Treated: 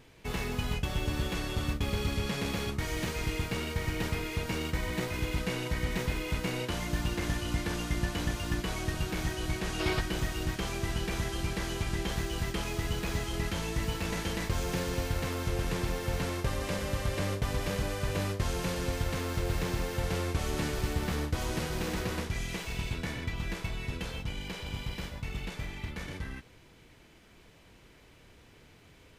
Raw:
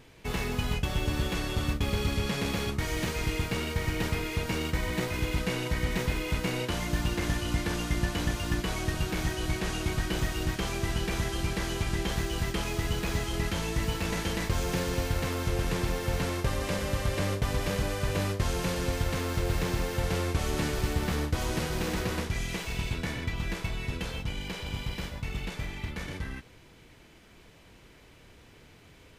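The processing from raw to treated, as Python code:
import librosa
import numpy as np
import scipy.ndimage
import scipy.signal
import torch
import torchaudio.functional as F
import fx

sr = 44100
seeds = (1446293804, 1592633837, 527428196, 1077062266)

y = fx.spec_box(x, sr, start_s=9.79, length_s=0.21, low_hz=310.0, high_hz=5600.0, gain_db=7)
y = y * librosa.db_to_amplitude(-2.5)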